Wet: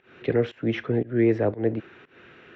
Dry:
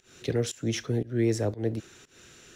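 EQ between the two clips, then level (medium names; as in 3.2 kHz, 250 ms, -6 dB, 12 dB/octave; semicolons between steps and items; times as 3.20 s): high-pass 220 Hz 6 dB/octave; low-pass 2.5 kHz 24 dB/octave; +7.0 dB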